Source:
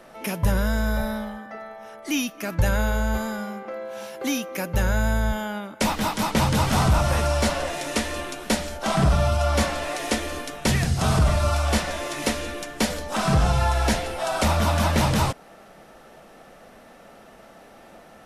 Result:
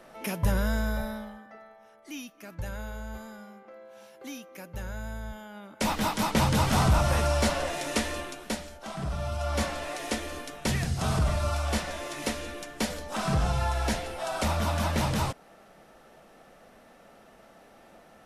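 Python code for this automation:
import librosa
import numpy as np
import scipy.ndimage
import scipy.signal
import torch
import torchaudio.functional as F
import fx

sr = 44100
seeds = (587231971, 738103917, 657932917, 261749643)

y = fx.gain(x, sr, db=fx.line((0.74, -4.0), (1.94, -15.0), (5.5, -15.0), (5.92, -3.0), (8.08, -3.0), (8.95, -15.5), (9.61, -6.5)))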